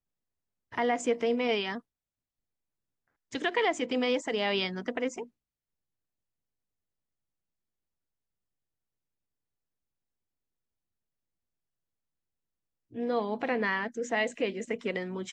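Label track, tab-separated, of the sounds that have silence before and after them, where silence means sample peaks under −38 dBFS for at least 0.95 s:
3.320000	5.240000	sound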